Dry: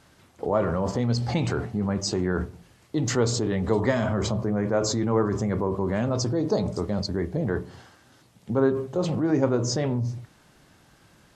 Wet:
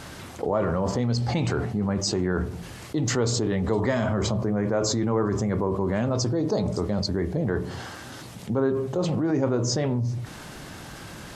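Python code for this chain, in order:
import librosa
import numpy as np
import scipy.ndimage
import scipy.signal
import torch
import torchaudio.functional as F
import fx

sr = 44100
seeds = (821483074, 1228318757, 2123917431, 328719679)

y = fx.env_flatten(x, sr, amount_pct=50)
y = y * 10.0 ** (-3.0 / 20.0)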